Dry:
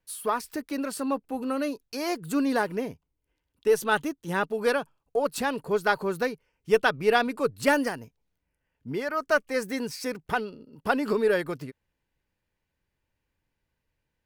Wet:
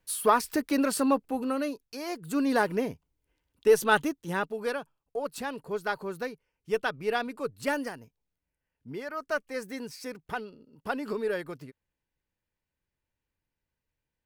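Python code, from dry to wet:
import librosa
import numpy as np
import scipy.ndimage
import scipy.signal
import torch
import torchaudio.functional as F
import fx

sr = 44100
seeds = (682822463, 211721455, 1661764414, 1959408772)

y = fx.gain(x, sr, db=fx.line((0.98, 5.0), (2.06, -6.5), (2.65, 1.5), (4.03, 1.5), (4.7, -7.0)))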